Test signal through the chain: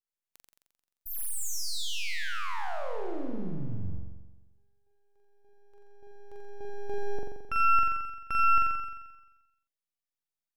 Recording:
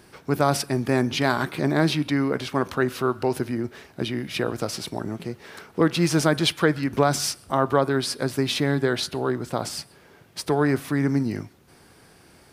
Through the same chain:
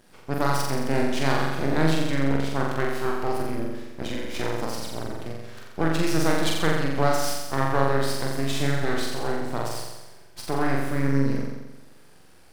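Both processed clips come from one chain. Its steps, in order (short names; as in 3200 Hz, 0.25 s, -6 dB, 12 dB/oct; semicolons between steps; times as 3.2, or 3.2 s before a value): half-wave rectifier; flutter echo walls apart 7.5 m, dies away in 1.1 s; gain -3 dB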